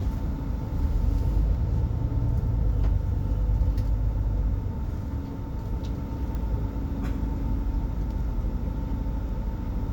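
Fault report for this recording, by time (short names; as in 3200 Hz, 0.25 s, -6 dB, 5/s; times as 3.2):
6.35 pop -23 dBFS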